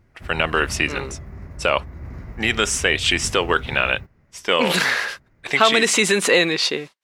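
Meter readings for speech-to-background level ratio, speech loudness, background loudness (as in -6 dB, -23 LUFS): 17.0 dB, -19.0 LUFS, -36.0 LUFS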